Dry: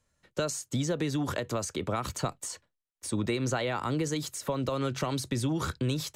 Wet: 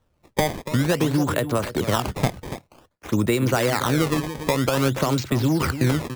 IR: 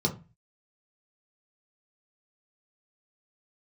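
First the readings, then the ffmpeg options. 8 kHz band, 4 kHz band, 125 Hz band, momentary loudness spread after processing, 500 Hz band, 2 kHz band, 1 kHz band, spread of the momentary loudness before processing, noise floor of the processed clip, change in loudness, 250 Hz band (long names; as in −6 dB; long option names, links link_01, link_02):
+3.5 dB, +7.5 dB, +9.5 dB, 6 LU, +9.0 dB, +10.5 dB, +9.0 dB, 5 LU, −67 dBFS, +9.0 dB, +9.0 dB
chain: -filter_complex "[0:a]adynamicsmooth=sensitivity=8:basefreq=3200,asplit=2[link_01][link_02];[link_02]adelay=285.7,volume=-11dB,highshelf=frequency=4000:gain=-6.43[link_03];[link_01][link_03]amix=inputs=2:normalize=0,acrusher=samples=18:mix=1:aa=0.000001:lfo=1:lforange=28.8:lforate=0.52,volume=9dB"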